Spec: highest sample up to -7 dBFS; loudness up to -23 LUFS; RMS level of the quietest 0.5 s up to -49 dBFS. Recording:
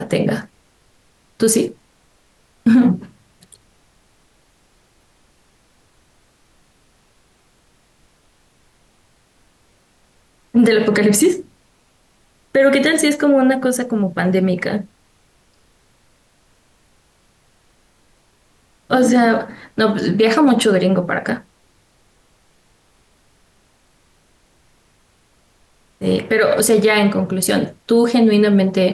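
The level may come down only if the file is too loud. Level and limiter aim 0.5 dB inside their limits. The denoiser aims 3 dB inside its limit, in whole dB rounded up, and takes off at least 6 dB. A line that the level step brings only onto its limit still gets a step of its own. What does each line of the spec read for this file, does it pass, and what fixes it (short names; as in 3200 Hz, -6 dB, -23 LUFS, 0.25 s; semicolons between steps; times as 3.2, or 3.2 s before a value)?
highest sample -5.0 dBFS: fail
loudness -16.0 LUFS: fail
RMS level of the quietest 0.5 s -57 dBFS: OK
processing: gain -7.5 dB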